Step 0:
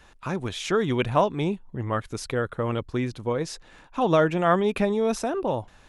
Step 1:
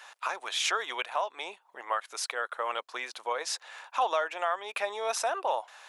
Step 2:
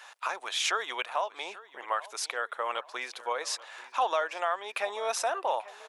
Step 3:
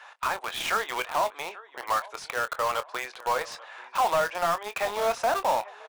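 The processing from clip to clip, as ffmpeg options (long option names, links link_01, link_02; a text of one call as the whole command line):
ffmpeg -i in.wav -filter_complex "[0:a]asplit=2[link_01][link_02];[link_02]acompressor=threshold=-33dB:ratio=6,volume=1.5dB[link_03];[link_01][link_03]amix=inputs=2:normalize=0,highpass=frequency=680:width=0.5412,highpass=frequency=680:width=1.3066,alimiter=limit=-17.5dB:level=0:latency=1:release=467" out.wav
ffmpeg -i in.wav -filter_complex "[0:a]asplit=2[link_01][link_02];[link_02]adelay=837,lowpass=frequency=3800:poles=1,volume=-18dB,asplit=2[link_03][link_04];[link_04]adelay=837,lowpass=frequency=3800:poles=1,volume=0.4,asplit=2[link_05][link_06];[link_06]adelay=837,lowpass=frequency=3800:poles=1,volume=0.4[link_07];[link_01][link_03][link_05][link_07]amix=inputs=4:normalize=0" out.wav
ffmpeg -i in.wav -filter_complex "[0:a]asplit=2[link_01][link_02];[link_02]highpass=frequency=720:poles=1,volume=14dB,asoftclip=type=tanh:threshold=-17dB[link_03];[link_01][link_03]amix=inputs=2:normalize=0,lowpass=frequency=1100:poles=1,volume=-6dB,asplit=2[link_04][link_05];[link_05]acrusher=bits=4:mix=0:aa=0.000001,volume=-3.5dB[link_06];[link_04][link_06]amix=inputs=2:normalize=0,asplit=2[link_07][link_08];[link_08]adelay=24,volume=-12dB[link_09];[link_07][link_09]amix=inputs=2:normalize=0,volume=-1.5dB" out.wav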